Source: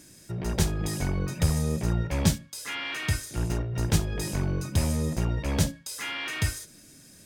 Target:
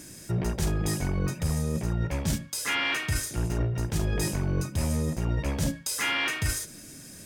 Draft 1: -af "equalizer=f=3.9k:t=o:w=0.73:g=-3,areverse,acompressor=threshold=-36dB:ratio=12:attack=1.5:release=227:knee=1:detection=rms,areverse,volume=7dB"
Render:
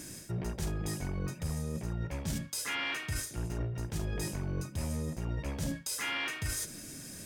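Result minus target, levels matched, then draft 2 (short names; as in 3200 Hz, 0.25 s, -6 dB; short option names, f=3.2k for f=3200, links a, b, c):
compressor: peak gain reduction +8 dB
-af "equalizer=f=3.9k:t=o:w=0.73:g=-3,areverse,acompressor=threshold=-27.5dB:ratio=12:attack=1.5:release=227:knee=1:detection=rms,areverse,volume=7dB"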